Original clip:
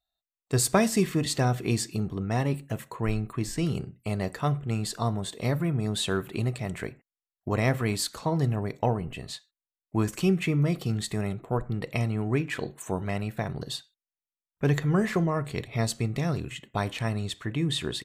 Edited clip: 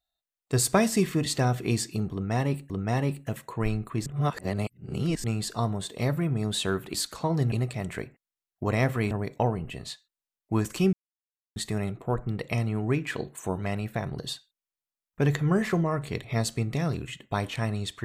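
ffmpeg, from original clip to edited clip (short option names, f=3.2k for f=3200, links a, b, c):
-filter_complex "[0:a]asplit=9[a][b][c][d][e][f][g][h][i];[a]atrim=end=2.702[j];[b]atrim=start=2.128:end=3.492[k];[c]atrim=start=3.488:end=4.672,asetpts=PTS-STARTPTS,areverse[l];[d]atrim=start=4.668:end=6.372[m];[e]atrim=start=7.958:end=8.542[n];[f]atrim=start=6.368:end=7.962[o];[g]atrim=start=8.538:end=10.36,asetpts=PTS-STARTPTS,afade=t=out:st=1.818:d=0.004:c=hsin[p];[h]atrim=start=10.36:end=10.99,asetpts=PTS-STARTPTS,volume=0[q];[i]atrim=start=10.99,asetpts=PTS-STARTPTS,afade=t=in:d=0.004:c=hsin[r];[j][k]acrossfade=d=0.004:c1=hsin:c2=hsin[s];[s][l]acrossfade=d=0.004:c1=hsin:c2=hsin[t];[t][m]acrossfade=d=0.004:c1=hsin:c2=hsin[u];[u][n]acrossfade=d=0.004:c1=hsin:c2=hsin[v];[v][o]acrossfade=d=0.004:c1=hsin:c2=hsin[w];[p][q][r]concat=n=3:v=0:a=1[x];[w][x]acrossfade=d=0.004:c1=hsin:c2=hsin"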